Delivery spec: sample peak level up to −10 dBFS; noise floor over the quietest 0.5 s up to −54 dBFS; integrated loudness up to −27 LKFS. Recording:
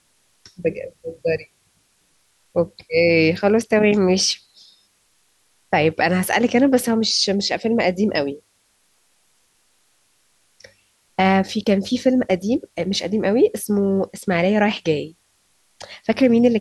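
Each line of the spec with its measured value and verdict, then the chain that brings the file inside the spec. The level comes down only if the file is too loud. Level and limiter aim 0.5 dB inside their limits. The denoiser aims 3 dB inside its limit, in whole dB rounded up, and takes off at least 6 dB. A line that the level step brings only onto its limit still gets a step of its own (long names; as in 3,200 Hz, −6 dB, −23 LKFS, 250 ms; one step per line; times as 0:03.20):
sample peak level −5.0 dBFS: out of spec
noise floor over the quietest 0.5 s −63 dBFS: in spec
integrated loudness −19.0 LKFS: out of spec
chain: level −8.5 dB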